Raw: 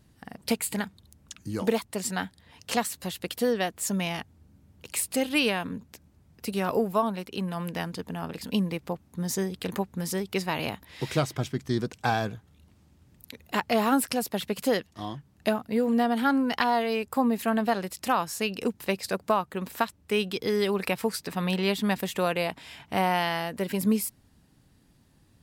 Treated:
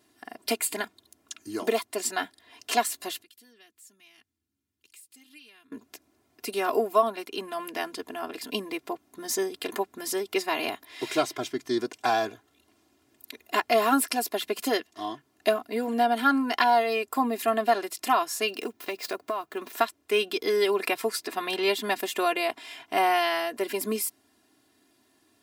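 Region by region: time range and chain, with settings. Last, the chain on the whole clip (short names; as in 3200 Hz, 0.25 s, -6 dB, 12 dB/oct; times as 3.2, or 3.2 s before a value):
3.22–5.72 passive tone stack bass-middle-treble 6-0-2 + compressor 2.5:1, threshold -55 dBFS
18.48–19.73 median filter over 5 samples + high shelf 10000 Hz +8 dB + compressor 10:1, threshold -27 dBFS
whole clip: HPF 300 Hz 12 dB/oct; comb 2.9 ms, depth 90%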